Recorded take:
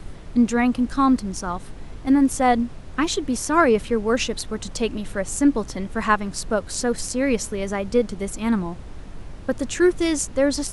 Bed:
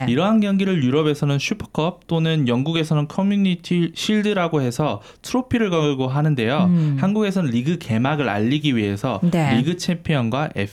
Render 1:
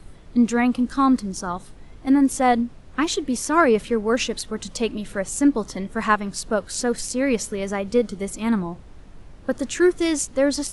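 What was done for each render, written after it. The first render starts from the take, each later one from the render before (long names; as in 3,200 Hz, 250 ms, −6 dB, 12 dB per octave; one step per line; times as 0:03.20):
noise reduction from a noise print 7 dB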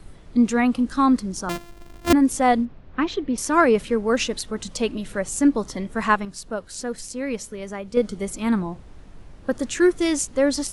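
0:01.49–0:02.13: samples sorted by size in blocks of 128 samples
0:02.65–0:03.38: high-frequency loss of the air 240 metres
0:06.25–0:07.97: clip gain −6.5 dB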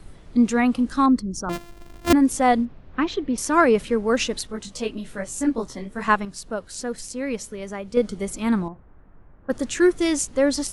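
0:01.06–0:01.53: spectral envelope exaggerated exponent 1.5
0:04.47–0:06.08: micro pitch shift up and down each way 34 cents
0:08.68–0:09.50: transistor ladder low-pass 1,900 Hz, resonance 30%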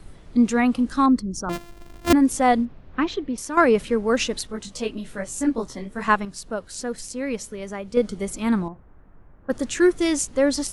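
0:03.06–0:03.57: fade out, to −9 dB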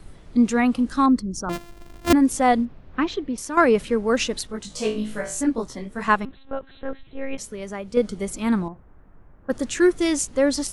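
0:04.68–0:05.41: flutter between parallel walls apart 3.2 metres, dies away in 0.37 s
0:06.25–0:07.38: one-pitch LPC vocoder at 8 kHz 270 Hz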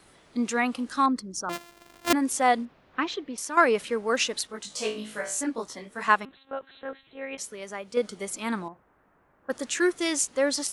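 high-pass filter 730 Hz 6 dB per octave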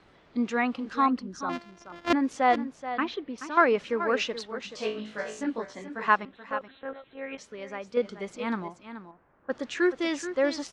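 high-frequency loss of the air 190 metres
single-tap delay 429 ms −11.5 dB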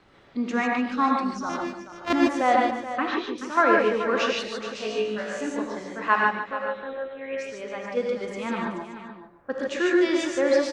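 single-tap delay 145 ms −11 dB
reverb whose tail is shaped and stops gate 170 ms rising, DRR −1.5 dB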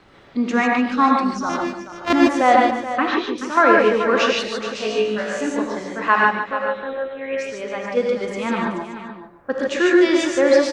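level +6.5 dB
brickwall limiter −3 dBFS, peak gain reduction 3 dB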